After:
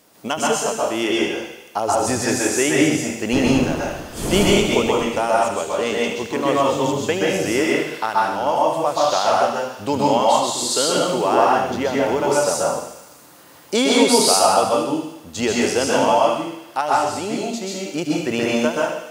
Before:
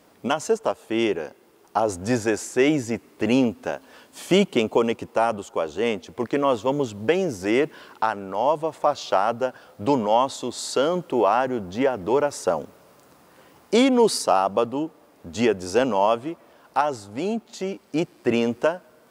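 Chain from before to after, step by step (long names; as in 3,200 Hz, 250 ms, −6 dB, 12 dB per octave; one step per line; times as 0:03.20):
0:03.32–0:04.89: wind on the microphone 400 Hz −25 dBFS
high-shelf EQ 3,300 Hz +10.5 dB
surface crackle 49 per second −52 dBFS
on a send: delay with a high-pass on its return 75 ms, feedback 68%, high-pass 1,900 Hz, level −9 dB
on the sum: dense smooth reverb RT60 0.7 s, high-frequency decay 0.85×, pre-delay 115 ms, DRR −4 dB
level −2 dB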